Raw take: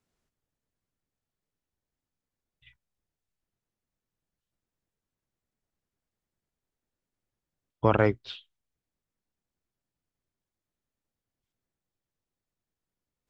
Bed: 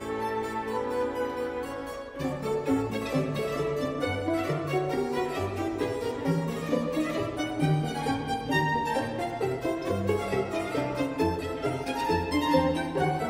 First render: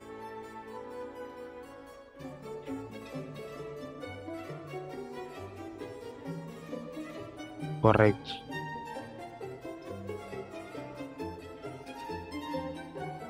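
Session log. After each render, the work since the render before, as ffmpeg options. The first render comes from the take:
-filter_complex "[1:a]volume=-13dB[a];[0:a][a]amix=inputs=2:normalize=0"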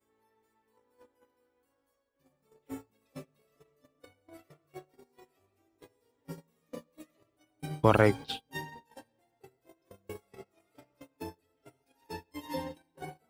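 -af "aemphasis=mode=production:type=50fm,agate=range=-29dB:threshold=-37dB:ratio=16:detection=peak"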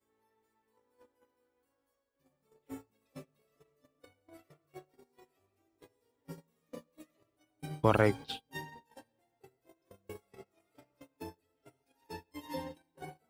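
-af "volume=-3.5dB"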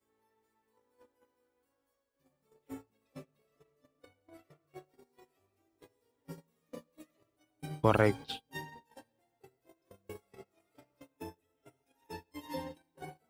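-filter_complex "[0:a]asettb=1/sr,asplit=3[a][b][c];[a]atrim=end=2.734[d];[b]atrim=start=2.73:end=4.78,asetpts=PTS-STARTPTS,afade=t=in:d=0.004:c=qsin,afade=t=out:st=2.046:d=0.004:c=qsin,highshelf=f=5.2k:g=-4[e];[c]atrim=start=4.776[f];[d][e]acrossfade=d=0.004:c1=hsin:c2=qsin[g];[g][f]acrossfade=d=0.004:c1=qsin:c2=hsin,asettb=1/sr,asplit=3[h][i][j];[h]atrim=end=11.124[k];[i]atrim=start=11.12:end=12.13,asetpts=PTS-STARTPTS,afade=t=in:d=0.004:c=qsin,afade=t=out:st=1.006:d=0.004:c=qsin,asuperstop=centerf=4500:order=4:qfactor=6.9[l];[j]atrim=start=12.126[m];[k][l]acrossfade=d=0.004:c1=hsin:c2=qsin[n];[n][m]acrossfade=d=0.004:c1=qsin:c2=hsin"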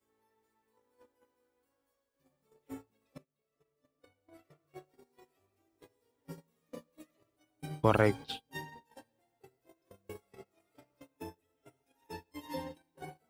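-filter_complex "[0:a]asplit=2[a][b];[a]atrim=end=3.18,asetpts=PTS-STARTPTS,afade=t=out:st=3.176:d=0.004:c=hsin:silence=0.125893[c];[b]atrim=start=3.18,asetpts=PTS-STARTPTS,afade=t=in:d=1.59:silence=0.125893[d];[c][d]concat=n=2:v=0:a=1"

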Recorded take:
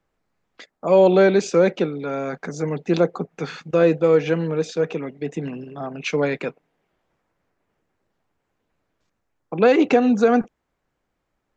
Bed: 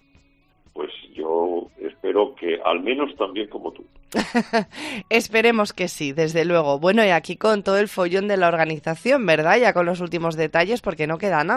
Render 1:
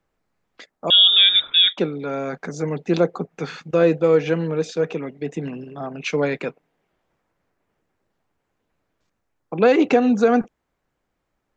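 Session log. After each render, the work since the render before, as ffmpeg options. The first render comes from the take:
-filter_complex "[0:a]asettb=1/sr,asplit=3[a][b][c];[a]atrim=end=0.904[d];[b]atrim=start=0.9:end=1.78,asetpts=PTS-STARTPTS,afade=t=in:d=0.004:c=qsin,afade=t=out:st=0.876:d=0.004:c=qsin,lowpass=f=3.3k:t=q:w=0.5098,lowpass=f=3.3k:t=q:w=0.6013,lowpass=f=3.3k:t=q:w=0.9,lowpass=f=3.3k:t=q:w=2.563,afreqshift=-3900[e];[c]atrim=start=1.776[f];[d][e]acrossfade=d=0.004:c1=hsin:c2=qsin[g];[g][f]acrossfade=d=0.004:c1=qsin:c2=hsin"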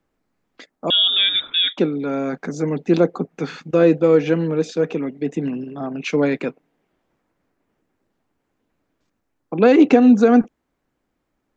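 -filter_complex "[0:a]acrossover=split=3400[a][b];[b]acompressor=threshold=-27dB:ratio=4:attack=1:release=60[c];[a][c]amix=inputs=2:normalize=0,equalizer=f=270:t=o:w=0.84:g=7.5"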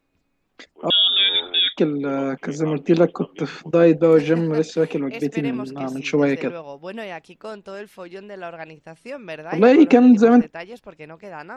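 -filter_complex "[1:a]volume=-16dB[a];[0:a][a]amix=inputs=2:normalize=0"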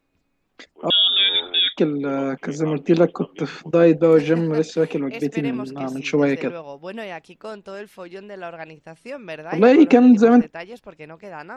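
-af anull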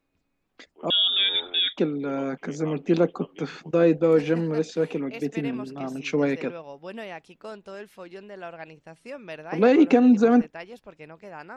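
-af "volume=-5dB"

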